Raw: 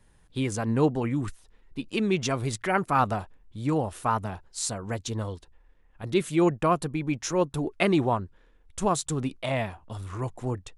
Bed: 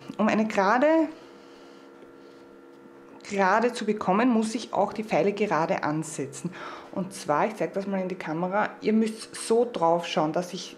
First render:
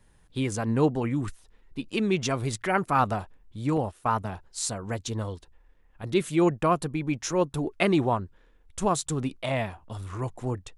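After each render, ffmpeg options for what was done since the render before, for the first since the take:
-filter_complex "[0:a]asettb=1/sr,asplit=3[a][b][c];[a]atrim=end=3.774[d];[b]atrim=start=3.77:end=4.33,asetpts=PTS-STARTPTS,afade=t=in:d=0.004:c=qsin,afade=t=out:st=0.556:d=0.004:c=qsin,agate=range=-14dB:threshold=-37dB:ratio=16:release=100:detection=peak[e];[c]atrim=start=4.326[f];[d][e]acrossfade=d=0.004:c1=hsin:c2=qsin[g];[g][f]acrossfade=d=0.004:c1=qsin:c2=hsin"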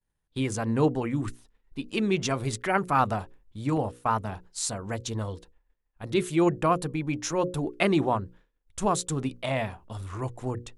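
-af "bandreject=f=60:t=h:w=6,bandreject=f=120:t=h:w=6,bandreject=f=180:t=h:w=6,bandreject=f=240:t=h:w=6,bandreject=f=300:t=h:w=6,bandreject=f=360:t=h:w=6,bandreject=f=420:t=h:w=6,bandreject=f=480:t=h:w=6,bandreject=f=540:t=h:w=6,agate=range=-33dB:threshold=-46dB:ratio=3:detection=peak"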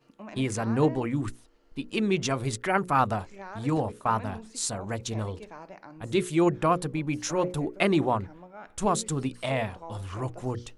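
-filter_complex "[1:a]volume=-20dB[a];[0:a][a]amix=inputs=2:normalize=0"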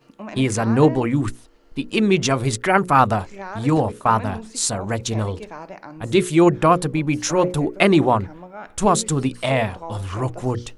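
-af "volume=8.5dB"

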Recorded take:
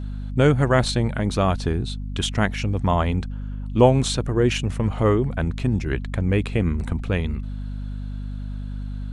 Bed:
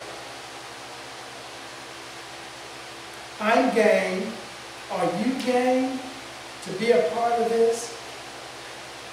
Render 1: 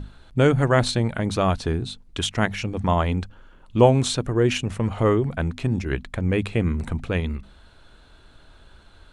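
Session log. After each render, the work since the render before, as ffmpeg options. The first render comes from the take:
-af "bandreject=f=50:t=h:w=6,bandreject=f=100:t=h:w=6,bandreject=f=150:t=h:w=6,bandreject=f=200:t=h:w=6,bandreject=f=250:t=h:w=6"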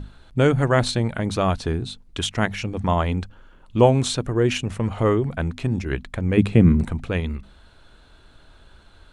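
-filter_complex "[0:a]asettb=1/sr,asplit=3[a][b][c];[a]atrim=end=6.374[d];[b]atrim=start=6.37:end=6.85,asetpts=PTS-STARTPTS,afade=t=in:d=0.004:c=qsin,afade=t=out:st=0.476:d=0.004:c=qsin,equalizer=f=180:t=o:w=2.2:g=11[e];[c]atrim=start=6.846[f];[d][e]acrossfade=d=0.004:c1=hsin:c2=qsin[g];[g][f]acrossfade=d=0.004:c1=qsin:c2=hsin"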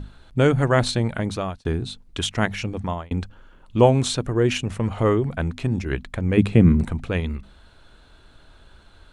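-filter_complex "[0:a]asplit=3[a][b][c];[a]atrim=end=1.65,asetpts=PTS-STARTPTS,afade=t=out:st=1.21:d=0.44[d];[b]atrim=start=1.65:end=3.11,asetpts=PTS-STARTPTS,afade=t=in:d=0.004:c=hsin,afade=t=out:st=1.05:d=0.41[e];[c]atrim=start=3.11,asetpts=PTS-STARTPTS,afade=t=in:d=0.004:c=hsin[f];[d][e][f]concat=n=3:v=0:a=1"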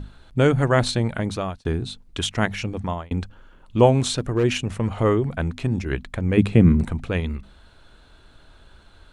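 -filter_complex "[0:a]asettb=1/sr,asplit=3[a][b][c];[a]atrim=end=4.004[d];[b]atrim=start=4:end=4.44,asetpts=PTS-STARTPTS,afade=t=in:d=0.004:c=qsin,afade=t=out:st=0.436:d=0.004:c=qsin,volume=14.5dB,asoftclip=hard,volume=-14.5dB[e];[c]atrim=start=4.436[f];[d][e]acrossfade=d=0.004:c1=hsin:c2=qsin[g];[g][f]acrossfade=d=0.004:c1=qsin:c2=hsin"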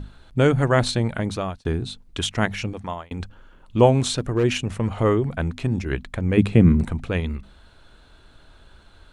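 -filter_complex "[0:a]asettb=1/sr,asplit=3[a][b][c];[a]atrim=end=2.734[d];[b]atrim=start=2.73:end=3.2,asetpts=PTS-STARTPTS,afade=t=in:d=0.004:c=qsin,afade=t=out:st=0.466:d=0.004:c=qsin,lowshelf=f=360:g=-8.5[e];[c]atrim=start=3.196[f];[d][e]acrossfade=d=0.004:c1=hsin:c2=qsin[g];[g][f]acrossfade=d=0.004:c1=qsin:c2=hsin"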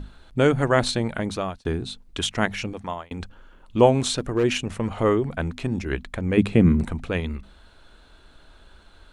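-af "equalizer=f=110:t=o:w=1:g=-6"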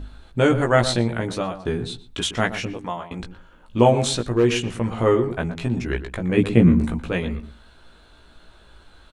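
-filter_complex "[0:a]asplit=2[a][b];[b]adelay=17,volume=-3.5dB[c];[a][c]amix=inputs=2:normalize=0,asplit=2[d][e];[e]adelay=119,lowpass=f=1.3k:p=1,volume=-10.5dB,asplit=2[f][g];[g]adelay=119,lowpass=f=1.3k:p=1,volume=0.17[h];[d][f][h]amix=inputs=3:normalize=0"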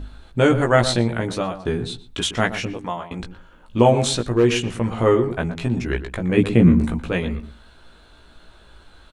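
-af "volume=1.5dB,alimiter=limit=-3dB:level=0:latency=1"

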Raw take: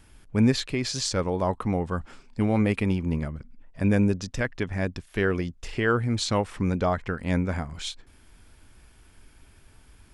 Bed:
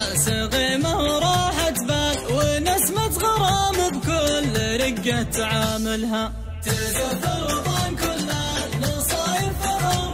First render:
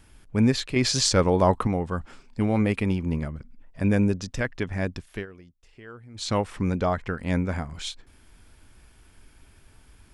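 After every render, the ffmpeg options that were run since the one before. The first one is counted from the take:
-filter_complex "[0:a]asplit=5[a][b][c][d][e];[a]atrim=end=0.762[f];[b]atrim=start=0.758:end=1.672,asetpts=PTS-STARTPTS,volume=6dB[g];[c]atrim=start=1.668:end=5.26,asetpts=PTS-STARTPTS,afade=t=out:st=3.432:d=0.16:silence=0.0944061[h];[d]atrim=start=5.26:end=6.14,asetpts=PTS-STARTPTS,volume=-20.5dB[i];[e]atrim=start=6.14,asetpts=PTS-STARTPTS,afade=t=in:d=0.16:silence=0.0944061[j];[f][g]acrossfade=d=0.004:c1=hsin:c2=hsin[k];[h][i][j]concat=n=3:v=0:a=1[l];[k][l]acrossfade=d=0.004:c1=hsin:c2=hsin"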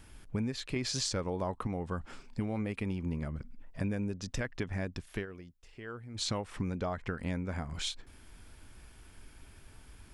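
-af "acompressor=threshold=-31dB:ratio=8"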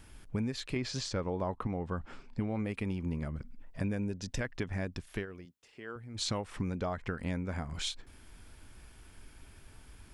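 -filter_complex "[0:a]asettb=1/sr,asplit=3[a][b][c];[a]atrim=end=0.774[d];[b]atrim=start=0.77:end=2.59,asetpts=PTS-STARTPTS,afade=t=in:d=0.004:c=qsin,afade=t=out:st=1.816:d=0.004:c=qsin,aemphasis=mode=reproduction:type=50fm[e];[c]atrim=start=2.586[f];[d][e]acrossfade=d=0.004:c1=hsin:c2=qsin[g];[g][f]acrossfade=d=0.004:c1=qsin:c2=hsin,asettb=1/sr,asplit=3[h][i][j];[h]atrim=end=3.994[k];[i]atrim=start=3.99:end=4.39,asetpts=PTS-STARTPTS,afade=t=in:d=0.004:c=qsin,afade=t=out:st=0.396:d=0.004:c=qsin,asuperstop=centerf=1200:order=8:qfactor=4.6[l];[j]atrim=start=4.386[m];[k][l]acrossfade=d=0.004:c1=hsin:c2=qsin[n];[n][m]acrossfade=d=0.004:c1=qsin:c2=hsin,asettb=1/sr,asplit=3[o][p][q];[o]atrim=end=5.454[r];[p]atrim=start=5.45:end=5.96,asetpts=PTS-STARTPTS,afade=t=in:d=0.004:c=qsin,afade=t=out:st=0.506:d=0.004:c=qsin,highpass=170[s];[q]atrim=start=5.956[t];[r][s]acrossfade=d=0.004:c1=hsin:c2=qsin[u];[u][t]acrossfade=d=0.004:c1=qsin:c2=hsin"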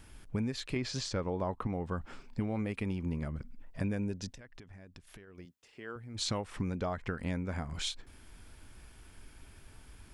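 -filter_complex "[0:a]asettb=1/sr,asplit=3[a][b][c];[a]atrim=end=1.734[d];[b]atrim=start=1.73:end=2.65,asetpts=PTS-STARTPTS,afade=t=in:d=0.004:c=qsin,afade=t=out:st=0.916:d=0.004:c=qsin,highshelf=f=7.2k:g=7[e];[c]atrim=start=2.646[f];[d][e]acrossfade=d=0.004:c1=hsin:c2=qsin[g];[g][f]acrossfade=d=0.004:c1=qsin:c2=hsin,asettb=1/sr,asplit=3[h][i][j];[h]atrim=end=4.304[k];[i]atrim=start=4.3:end=5.38,asetpts=PTS-STARTPTS,afade=t=in:d=0.004:c=qsin,afade=t=out:st=1.076:d=0.004:c=qsin,acompressor=threshold=-49dB:ratio=6:attack=3.2:release=140:knee=1:detection=peak[l];[j]atrim=start=5.376[m];[k][l]acrossfade=d=0.004:c1=hsin:c2=qsin[n];[n][m]acrossfade=d=0.004:c1=qsin:c2=hsin"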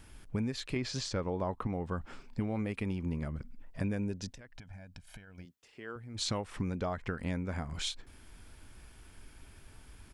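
-filter_complex "[0:a]asplit=3[a][b][c];[a]afade=t=out:st=4.56:d=0.02[d];[b]aecho=1:1:1.3:0.75,afade=t=in:st=4.56:d=0.02,afade=t=out:st=5.42:d=0.02[e];[c]afade=t=in:st=5.42:d=0.02[f];[d][e][f]amix=inputs=3:normalize=0"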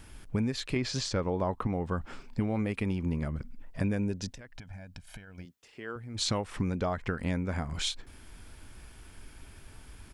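-af "volume=4dB"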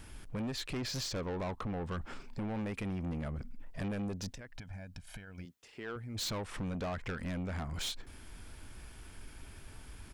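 -af "asoftclip=type=tanh:threshold=-33.5dB"

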